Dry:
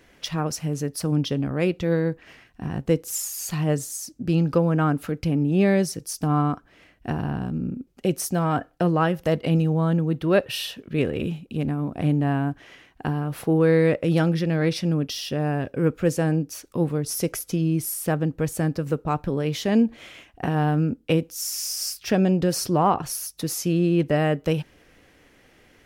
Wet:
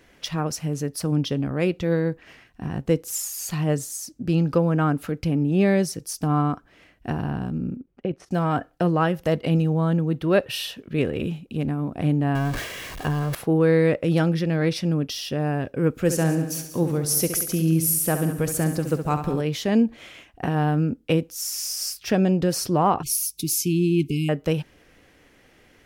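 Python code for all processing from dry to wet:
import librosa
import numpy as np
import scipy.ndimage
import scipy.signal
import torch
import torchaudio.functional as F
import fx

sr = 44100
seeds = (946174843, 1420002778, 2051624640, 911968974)

y = fx.chain(x, sr, fx.lowpass(hz=2200.0, slope=12),
    fx.level_steps(step_db=12), at=(7.76, 8.31))
y = fx.chain(y, sr, fx.zero_step(step_db=-31.5),
    fx.comb(ms=1.8, depth=0.39),
    fx.sustainer(db_per_s=60.0), at=(12.35, 13.35))
y = fx.chain(y, sr, fx.high_shelf(hz=5600.0, db=9.0),
    fx.echo_feedback(ms=68, feedback_pct=44, wet_db=-9),
    fx.echo_crushed(ms=184, feedback_pct=35, bits=8, wet_db=-14), at=(15.9, 19.41))
y = fx.chain(y, sr, fx.brickwall_bandstop(low_hz=430.0, high_hz=2100.0),
    fx.high_shelf(hz=6300.0, db=8.5), at=(23.03, 24.29))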